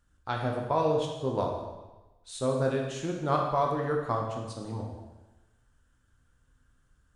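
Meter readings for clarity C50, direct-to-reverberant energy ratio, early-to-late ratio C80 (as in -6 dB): 3.0 dB, 0.0 dB, 5.5 dB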